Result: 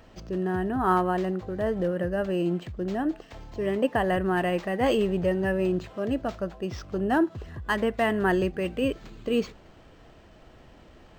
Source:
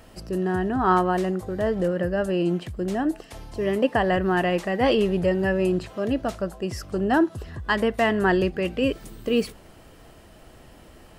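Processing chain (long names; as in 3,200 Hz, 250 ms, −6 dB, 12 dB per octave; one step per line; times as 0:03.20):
linearly interpolated sample-rate reduction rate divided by 4×
level −3 dB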